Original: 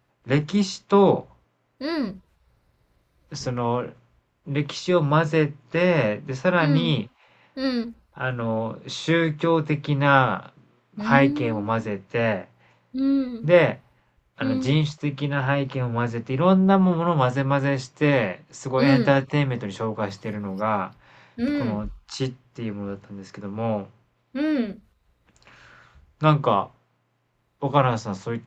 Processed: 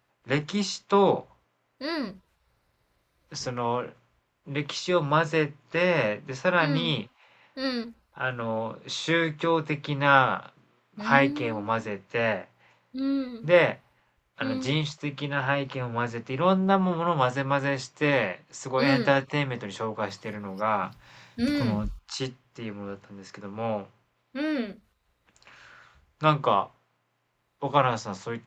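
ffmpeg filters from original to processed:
ffmpeg -i in.wav -filter_complex "[0:a]asettb=1/sr,asplit=3[link_01][link_02][link_03];[link_01]atrim=end=20.834[link_04];[link_02]atrim=start=20.83:end=21.99,asetpts=PTS-STARTPTS,afade=type=in:duration=0.004:curve=qsin,afade=type=out:start_time=1.156:duration=0.004:curve=qsin,bass=frequency=250:gain=10,treble=frequency=4000:gain=11[link_05];[link_03]atrim=start=21.986[link_06];[link_04][link_05]acrossfade=duration=0.004:curve1=hsin:curve2=qsin[link_07];[link_07][link_06]acrossfade=duration=0.004:curve1=qsin:curve2=hsin,lowshelf=frequency=430:gain=-8.5" out.wav

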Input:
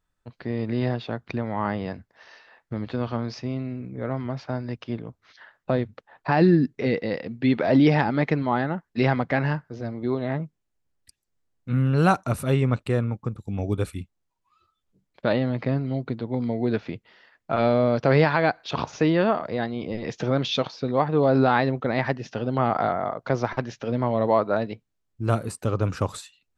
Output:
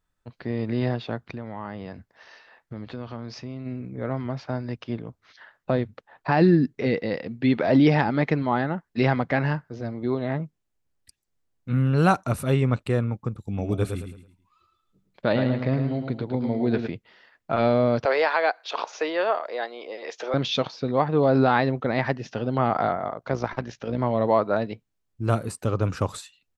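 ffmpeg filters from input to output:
ffmpeg -i in.wav -filter_complex "[0:a]asplit=3[link_01][link_02][link_03];[link_01]afade=type=out:start_time=1.25:duration=0.02[link_04];[link_02]acompressor=threshold=-36dB:ratio=2:attack=3.2:release=140:knee=1:detection=peak,afade=type=in:start_time=1.25:duration=0.02,afade=type=out:start_time=3.65:duration=0.02[link_05];[link_03]afade=type=in:start_time=3.65:duration=0.02[link_06];[link_04][link_05][link_06]amix=inputs=3:normalize=0,asplit=3[link_07][link_08][link_09];[link_07]afade=type=out:start_time=13.58:duration=0.02[link_10];[link_08]aecho=1:1:109|218|327|436:0.473|0.156|0.0515|0.017,afade=type=in:start_time=13.58:duration=0.02,afade=type=out:start_time=16.86:duration=0.02[link_11];[link_09]afade=type=in:start_time=16.86:duration=0.02[link_12];[link_10][link_11][link_12]amix=inputs=3:normalize=0,asettb=1/sr,asplit=3[link_13][link_14][link_15];[link_13]atrim=end=18.054[link_16];[link_14]atrim=start=18.05:end=20.34,asetpts=PTS-STARTPTS,afade=type=in:duration=0.004:curve=qsin,afade=type=out:start_time=2.286:duration=0.004:curve=qsin,highpass=frequency=440:width=0.5412,highpass=frequency=440:width=1.3066[link_17];[link_15]atrim=start=20.336[link_18];[link_16][link_17]acrossfade=duration=0.004:curve1=hsin:curve2=qsin[link_19];[link_19][link_18]acrossfade=duration=0.004:curve1=qsin:curve2=hsin,asettb=1/sr,asplit=3[link_20][link_21][link_22];[link_20]atrim=end=22.954[link_23];[link_21]atrim=start=22.95:end=23.98,asetpts=PTS-STARTPTS,afade=type=in:duration=0.004:curve=qsin,afade=type=out:start_time=1.026:duration=0.004:curve=qsin,tremolo=f=55:d=0.519[link_24];[link_22]atrim=start=23.976[link_25];[link_23][link_24]acrossfade=duration=0.004:curve1=hsin:curve2=qsin[link_26];[link_26][link_25]acrossfade=duration=0.004:curve1=qsin:curve2=hsin" out.wav

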